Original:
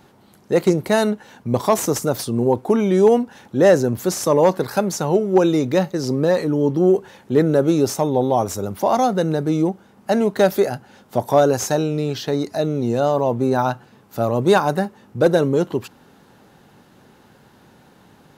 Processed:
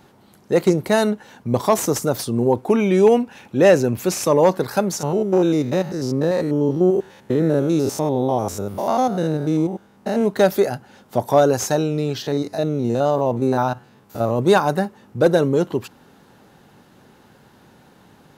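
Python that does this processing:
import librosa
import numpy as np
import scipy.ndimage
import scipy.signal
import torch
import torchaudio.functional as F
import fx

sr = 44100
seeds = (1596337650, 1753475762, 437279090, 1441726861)

y = fx.peak_eq(x, sr, hz=2500.0, db=10.5, octaves=0.32, at=(2.68, 4.3))
y = fx.spec_steps(y, sr, hold_ms=100, at=(4.99, 10.24), fade=0.02)
y = fx.spec_steps(y, sr, hold_ms=50, at=(12.22, 14.39))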